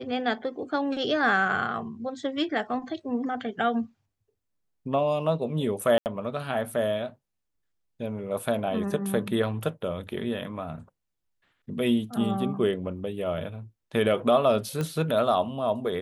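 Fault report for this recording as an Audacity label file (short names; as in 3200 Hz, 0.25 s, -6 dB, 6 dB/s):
5.980000	6.060000	gap 79 ms
14.810000	14.810000	pop -17 dBFS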